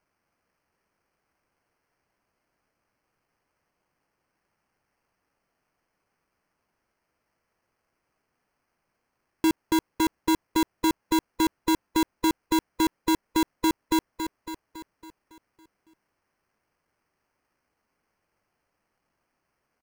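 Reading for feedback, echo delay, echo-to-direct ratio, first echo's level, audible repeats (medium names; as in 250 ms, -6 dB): 55%, 278 ms, -6.5 dB, -8.0 dB, 6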